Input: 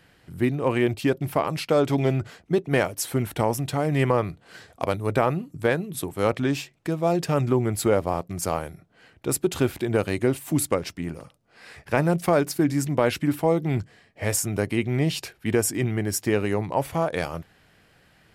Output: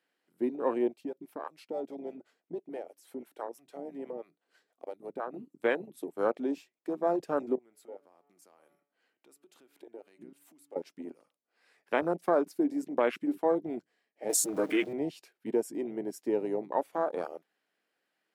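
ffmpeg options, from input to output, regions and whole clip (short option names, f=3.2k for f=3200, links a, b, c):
-filter_complex "[0:a]asettb=1/sr,asplit=3[a][b][c];[a]atrim=end=0.884[d];[b]atrim=start=0.88:end=5.34,asetpts=PTS-STARTPTS,afade=t=in:d=0.004:c=qsin,afade=t=out:st=4.456:d=0.004:c=qsin,acompressor=threshold=-27dB:ratio=2:attack=3.2:release=140:knee=1:detection=peak,acrossover=split=440[e][f];[e]aeval=exprs='val(0)*(1-0.7/2+0.7/2*cos(2*PI*6.1*n/s))':c=same[g];[f]aeval=exprs='val(0)*(1-0.7/2-0.7/2*cos(2*PI*6.1*n/s))':c=same[h];[g][h]amix=inputs=2:normalize=0[i];[c]atrim=start=5.336[j];[d][i]acrossfade=d=0.004:c1=hsin:c2=qsin[k];[k][j]acrossfade=d=0.004:c1=qsin:c2=hsin,asettb=1/sr,asplit=3[l][m][n];[l]atrim=end=7.554[o];[m]atrim=start=7.55:end=10.76,asetpts=PTS-STARTPTS,afade=t=in:d=0.004:c=qsin,afade=t=out:st=3.206:d=0.004:c=qsin,bandreject=f=143.2:t=h:w=4,bandreject=f=286.4:t=h:w=4,bandreject=f=429.6:t=h:w=4,bandreject=f=572.8:t=h:w=4,bandreject=f=716:t=h:w=4,bandreject=f=859.2:t=h:w=4,bandreject=f=1.0024k:t=h:w=4,bandreject=f=1.1456k:t=h:w=4,bandreject=f=1.2888k:t=h:w=4,bandreject=f=1.432k:t=h:w=4,bandreject=f=1.5752k:t=h:w=4,bandreject=f=1.7184k:t=h:w=4,bandreject=f=1.8616k:t=h:w=4,bandreject=f=2.0048k:t=h:w=4,bandreject=f=2.148k:t=h:w=4,bandreject=f=2.2912k:t=h:w=4,bandreject=f=2.4344k:t=h:w=4,bandreject=f=2.5776k:t=h:w=4,bandreject=f=2.7208k:t=h:w=4,bandreject=f=2.864k:t=h:w=4,bandreject=f=3.0072k:t=h:w=4,bandreject=f=3.1504k:t=h:w=4,acompressor=threshold=-35dB:ratio=6:attack=3.2:release=140:knee=1:detection=peak[p];[n]atrim=start=10.756[q];[o][p]acrossfade=d=0.004:c1=hsin:c2=qsin[r];[r][q]acrossfade=d=0.004:c1=qsin:c2=hsin,asettb=1/sr,asplit=3[s][t][u];[s]atrim=end=14.294[v];[t]atrim=start=14.29:end=14.93,asetpts=PTS-STARTPTS,afade=t=in:d=0.004:c=qsin,afade=t=out:st=0.636:d=0.004:c=qsin,aeval=exprs='val(0)+0.5*0.0422*sgn(val(0))':c=same,aecho=1:1:6.4:0.88,atrim=end_sample=28224[w];[u]atrim=start=14.926[x];[v][w]acrossfade=d=0.004:c1=hsin:c2=qsin[y];[y][x]acrossfade=d=0.004:c1=qsin:c2=hsin,highpass=f=260:w=0.5412,highpass=f=260:w=1.3066,afwtdn=0.0447,volume=-5dB"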